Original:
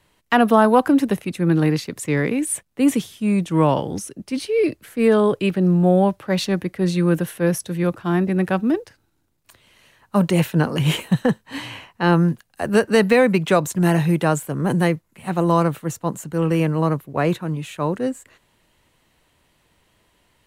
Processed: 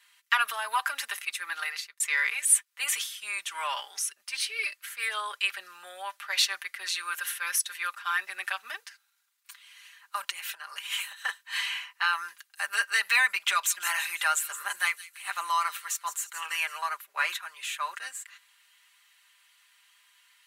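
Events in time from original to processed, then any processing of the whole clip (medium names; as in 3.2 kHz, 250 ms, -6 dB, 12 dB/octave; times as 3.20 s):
1.53–2.00 s: fade out
10.24–11.23 s: compression 16:1, threshold -26 dBFS
13.46–16.78 s: feedback echo behind a high-pass 167 ms, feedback 42%, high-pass 3.8 kHz, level -10.5 dB
whole clip: comb 5 ms, depth 78%; peak limiter -7.5 dBFS; high-pass 1.3 kHz 24 dB/octave; trim +1.5 dB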